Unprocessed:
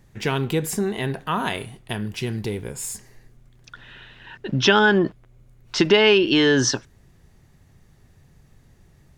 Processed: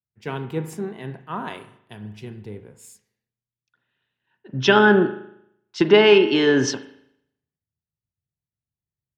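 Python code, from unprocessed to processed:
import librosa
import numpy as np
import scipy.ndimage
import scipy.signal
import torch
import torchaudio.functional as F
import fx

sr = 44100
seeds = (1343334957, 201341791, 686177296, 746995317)

y = scipy.signal.sosfilt(scipy.signal.butter(2, 120.0, 'highpass', fs=sr, output='sos'), x)
y = fx.high_shelf(y, sr, hz=2800.0, db=-9.0)
y = fx.rev_spring(y, sr, rt60_s=1.4, pass_ms=(38,), chirp_ms=60, drr_db=9.0)
y = fx.band_widen(y, sr, depth_pct=100)
y = F.gain(torch.from_numpy(y), -5.0).numpy()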